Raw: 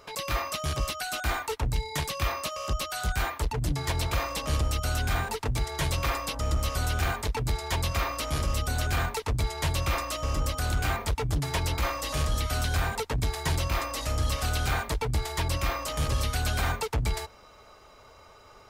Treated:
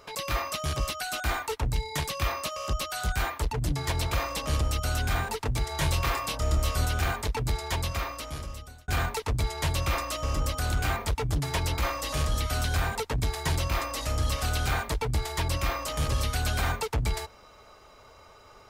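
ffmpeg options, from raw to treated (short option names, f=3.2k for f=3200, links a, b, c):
-filter_complex "[0:a]asettb=1/sr,asplit=3[a][b][c];[a]atrim=end=5.684[d];[b]atrim=start=5.68:end=6.85,asetpts=PTS-STARTPTS,afade=t=in:d=0.004:c=qsin,afade=t=out:st=1.166:d=0.004:c=qsin,asplit=2[e][f];[f]adelay=26,volume=-5.5dB[g];[e][g]amix=inputs=2:normalize=0,atrim=end_sample=51597[h];[c]atrim=start=6.846[i];[d][h]acrossfade=d=0.004:c1=hsin:c2=qsin[j];[j][i]acrossfade=d=0.004:c1=qsin:c2=hsin,asplit=2[k][l];[k]atrim=end=8.88,asetpts=PTS-STARTPTS,afade=t=out:st=7.61:d=1.27[m];[l]atrim=start=8.88,asetpts=PTS-STARTPTS,afade=t=in:d=0.004:c=hsin[n];[m][n]concat=n=2:v=0:a=1"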